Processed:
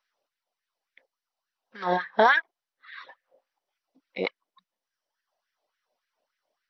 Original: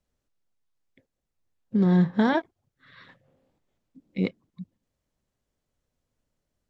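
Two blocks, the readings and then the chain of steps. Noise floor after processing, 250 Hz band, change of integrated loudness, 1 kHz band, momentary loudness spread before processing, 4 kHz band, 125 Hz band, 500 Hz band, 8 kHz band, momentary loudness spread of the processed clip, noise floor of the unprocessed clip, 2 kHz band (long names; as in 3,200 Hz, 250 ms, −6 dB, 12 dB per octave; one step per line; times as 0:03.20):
below −85 dBFS, −15.5 dB, −0.5 dB, +7.5 dB, 10 LU, +5.5 dB, −19.5 dB, +3.0 dB, can't be measured, 13 LU, −83 dBFS, +10.0 dB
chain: auto-filter high-pass sine 3.5 Hz 600–1,700 Hz
reverb reduction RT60 1.2 s
level +5.5 dB
MP2 48 kbit/s 32,000 Hz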